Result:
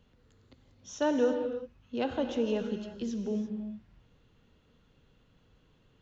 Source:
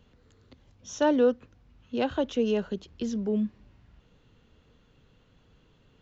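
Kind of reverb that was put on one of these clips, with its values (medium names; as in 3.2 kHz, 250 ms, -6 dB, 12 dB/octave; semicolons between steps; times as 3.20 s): gated-style reverb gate 370 ms flat, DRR 6 dB; trim -4.5 dB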